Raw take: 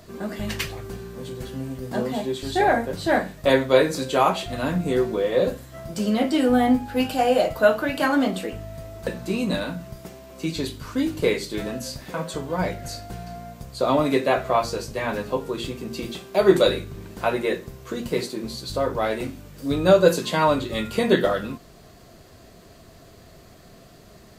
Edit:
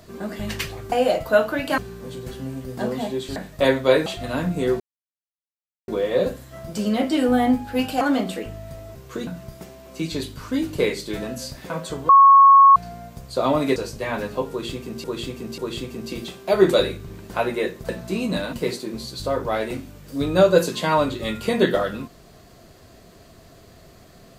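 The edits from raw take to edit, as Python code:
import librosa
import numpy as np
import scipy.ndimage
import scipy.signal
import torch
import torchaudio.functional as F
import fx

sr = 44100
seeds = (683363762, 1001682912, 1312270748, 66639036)

y = fx.edit(x, sr, fx.cut(start_s=2.5, length_s=0.71),
    fx.cut(start_s=3.91, length_s=0.44),
    fx.insert_silence(at_s=5.09, length_s=1.08),
    fx.move(start_s=7.22, length_s=0.86, to_s=0.92),
    fx.swap(start_s=9.02, length_s=0.69, other_s=17.71, other_length_s=0.32),
    fx.bleep(start_s=12.53, length_s=0.67, hz=1100.0, db=-7.0),
    fx.cut(start_s=14.2, length_s=0.51),
    fx.repeat(start_s=15.45, length_s=0.54, count=3), tone=tone)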